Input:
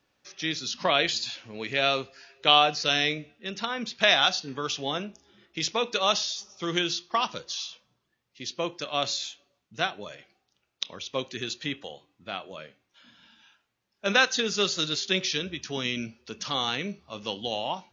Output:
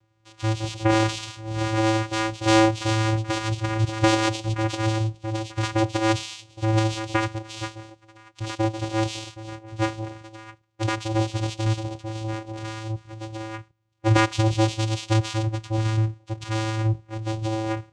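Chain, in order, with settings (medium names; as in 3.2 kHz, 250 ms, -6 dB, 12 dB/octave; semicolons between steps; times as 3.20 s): ever faster or slower copies 274 ms, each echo +5 st, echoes 3, each echo -6 dB; vocoder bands 4, square 110 Hz; trim +4.5 dB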